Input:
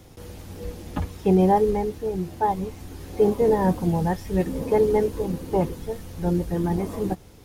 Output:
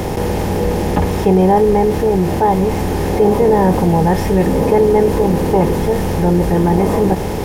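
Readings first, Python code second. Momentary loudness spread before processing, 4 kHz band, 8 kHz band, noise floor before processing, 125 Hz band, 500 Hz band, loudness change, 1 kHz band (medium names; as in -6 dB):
17 LU, +14.0 dB, +13.0 dB, -48 dBFS, +11.0 dB, +9.5 dB, +9.5 dB, +10.0 dB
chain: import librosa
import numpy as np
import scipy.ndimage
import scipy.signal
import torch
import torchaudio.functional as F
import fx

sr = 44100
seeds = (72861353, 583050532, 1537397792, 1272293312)

y = fx.bin_compress(x, sr, power=0.6)
y = fx.env_flatten(y, sr, amount_pct=50)
y = F.gain(torch.from_numpy(y), 4.0).numpy()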